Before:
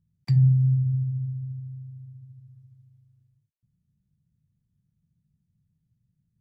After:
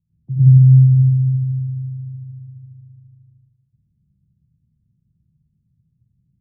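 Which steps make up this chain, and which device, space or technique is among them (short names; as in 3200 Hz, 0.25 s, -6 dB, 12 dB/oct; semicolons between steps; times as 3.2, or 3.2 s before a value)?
next room (LPF 440 Hz 24 dB/oct; reverb RT60 0.80 s, pre-delay 91 ms, DRR -9.5 dB); gain -3 dB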